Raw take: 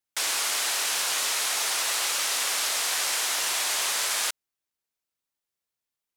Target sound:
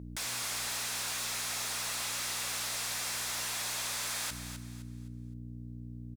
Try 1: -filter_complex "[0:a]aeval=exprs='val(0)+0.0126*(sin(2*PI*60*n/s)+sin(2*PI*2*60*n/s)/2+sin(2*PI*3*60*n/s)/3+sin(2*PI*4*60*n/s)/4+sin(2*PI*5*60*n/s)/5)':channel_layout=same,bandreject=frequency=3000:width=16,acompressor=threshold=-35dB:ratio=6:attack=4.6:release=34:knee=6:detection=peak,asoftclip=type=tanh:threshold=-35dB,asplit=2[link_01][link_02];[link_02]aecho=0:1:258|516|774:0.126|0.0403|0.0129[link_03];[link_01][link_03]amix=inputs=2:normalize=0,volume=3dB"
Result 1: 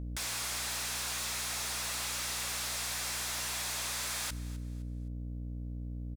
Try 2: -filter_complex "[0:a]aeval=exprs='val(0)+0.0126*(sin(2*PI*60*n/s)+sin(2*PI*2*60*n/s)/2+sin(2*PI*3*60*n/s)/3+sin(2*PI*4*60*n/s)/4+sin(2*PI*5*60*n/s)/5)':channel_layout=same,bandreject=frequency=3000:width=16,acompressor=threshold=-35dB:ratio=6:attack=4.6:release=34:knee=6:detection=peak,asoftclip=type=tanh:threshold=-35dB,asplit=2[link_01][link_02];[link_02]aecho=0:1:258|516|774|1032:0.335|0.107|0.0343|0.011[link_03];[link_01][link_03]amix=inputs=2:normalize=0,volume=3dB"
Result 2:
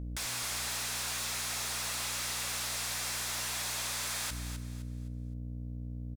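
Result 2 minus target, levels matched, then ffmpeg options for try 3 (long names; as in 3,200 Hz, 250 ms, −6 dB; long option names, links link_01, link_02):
125 Hz band +4.5 dB
-filter_complex "[0:a]aeval=exprs='val(0)+0.0126*(sin(2*PI*60*n/s)+sin(2*PI*2*60*n/s)/2+sin(2*PI*3*60*n/s)/3+sin(2*PI*4*60*n/s)/4+sin(2*PI*5*60*n/s)/5)':channel_layout=same,bandreject=frequency=3000:width=16,acompressor=threshold=-35dB:ratio=6:attack=4.6:release=34:knee=6:detection=peak,highpass=frequency=140:poles=1,asoftclip=type=tanh:threshold=-35dB,asplit=2[link_01][link_02];[link_02]aecho=0:1:258|516|774|1032:0.335|0.107|0.0343|0.011[link_03];[link_01][link_03]amix=inputs=2:normalize=0,volume=3dB"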